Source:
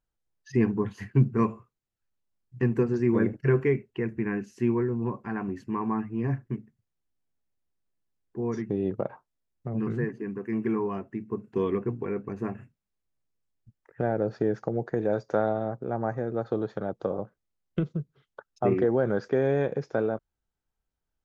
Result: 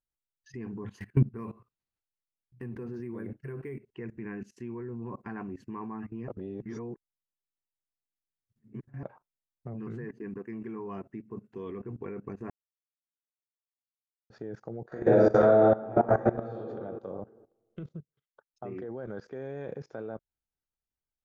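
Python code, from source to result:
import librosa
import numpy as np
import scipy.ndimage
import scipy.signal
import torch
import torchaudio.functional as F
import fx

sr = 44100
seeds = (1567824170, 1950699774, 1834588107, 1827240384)

y = fx.resample_linear(x, sr, factor=4, at=(0.99, 3.92))
y = fx.reverb_throw(y, sr, start_s=14.87, length_s=1.69, rt60_s=1.4, drr_db=-9.0)
y = fx.upward_expand(y, sr, threshold_db=-40.0, expansion=1.5, at=(17.98, 19.08), fade=0.02)
y = fx.edit(y, sr, fx.reverse_span(start_s=6.28, length_s=2.75),
    fx.silence(start_s=12.5, length_s=1.8), tone=tone)
y = fx.level_steps(y, sr, step_db=19)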